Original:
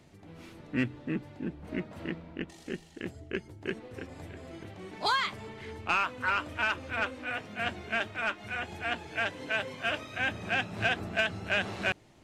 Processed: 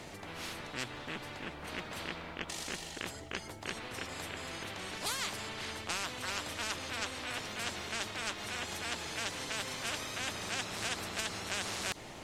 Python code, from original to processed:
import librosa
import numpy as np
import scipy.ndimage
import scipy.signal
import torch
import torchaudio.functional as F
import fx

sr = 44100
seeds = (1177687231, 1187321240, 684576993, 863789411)

y = fx.spectral_comp(x, sr, ratio=4.0)
y = F.gain(torch.from_numpy(y), -2.5).numpy()